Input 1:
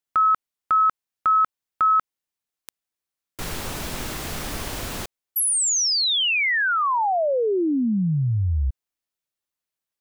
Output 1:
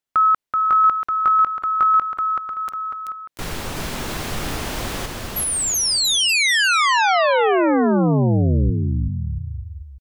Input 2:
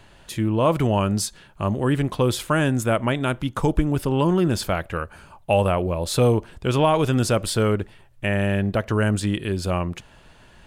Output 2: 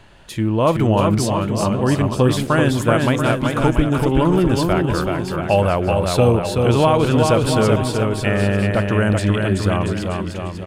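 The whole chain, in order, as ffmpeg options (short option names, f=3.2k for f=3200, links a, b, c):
-af "highshelf=f=6.1k:g=-5.5,aecho=1:1:380|684|927.2|1122|1277:0.631|0.398|0.251|0.158|0.1,volume=3dB"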